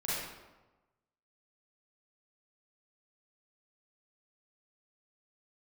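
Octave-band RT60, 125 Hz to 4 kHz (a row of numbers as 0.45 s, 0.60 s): 1.2 s, 1.2 s, 1.2 s, 1.1 s, 0.90 s, 0.70 s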